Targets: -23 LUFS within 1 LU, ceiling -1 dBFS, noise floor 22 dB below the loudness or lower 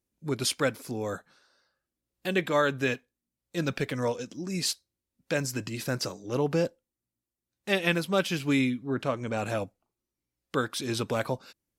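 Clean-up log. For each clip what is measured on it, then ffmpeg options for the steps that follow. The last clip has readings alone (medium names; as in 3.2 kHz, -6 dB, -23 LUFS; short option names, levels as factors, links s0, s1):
loudness -30.0 LUFS; peak level -12.0 dBFS; loudness target -23.0 LUFS
-> -af "volume=2.24"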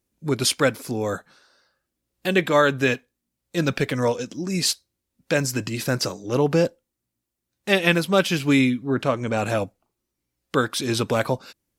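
loudness -23.0 LUFS; peak level -5.0 dBFS; noise floor -82 dBFS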